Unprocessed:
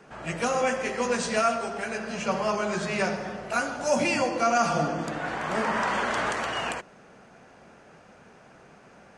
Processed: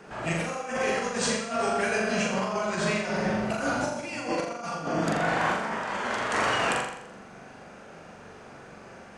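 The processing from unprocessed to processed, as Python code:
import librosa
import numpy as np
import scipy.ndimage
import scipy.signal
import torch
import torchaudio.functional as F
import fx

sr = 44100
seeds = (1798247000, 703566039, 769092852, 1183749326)

p1 = fx.low_shelf(x, sr, hz=200.0, db=8.5, at=(3.25, 3.93))
p2 = fx.over_compress(p1, sr, threshold_db=-30.0, ratio=-0.5)
y = p2 + fx.room_flutter(p2, sr, wall_m=7.2, rt60_s=0.72, dry=0)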